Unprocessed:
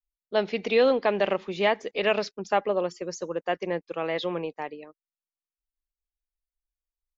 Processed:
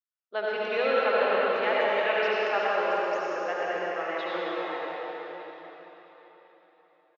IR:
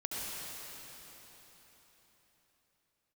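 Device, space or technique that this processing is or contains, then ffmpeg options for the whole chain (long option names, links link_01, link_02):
station announcement: -filter_complex "[0:a]highpass=430,lowpass=3600,equalizer=frequency=1400:width_type=o:width=0.57:gain=8.5,aecho=1:1:113.7|192.4:0.282|0.316[link_01];[1:a]atrim=start_sample=2205[link_02];[link_01][link_02]afir=irnorm=-1:irlink=0,volume=-4dB"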